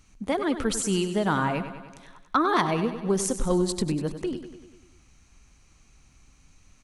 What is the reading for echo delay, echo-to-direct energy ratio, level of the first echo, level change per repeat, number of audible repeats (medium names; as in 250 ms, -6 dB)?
98 ms, -9.0 dB, -11.0 dB, -4.5 dB, 6